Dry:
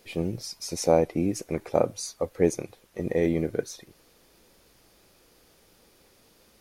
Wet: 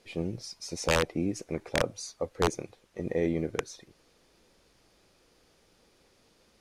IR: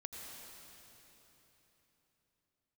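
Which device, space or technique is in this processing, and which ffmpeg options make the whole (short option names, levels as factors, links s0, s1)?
overflowing digital effects unit: -af "aeval=exprs='(mod(3.76*val(0)+1,2)-1)/3.76':c=same,lowpass=8200,volume=0.631"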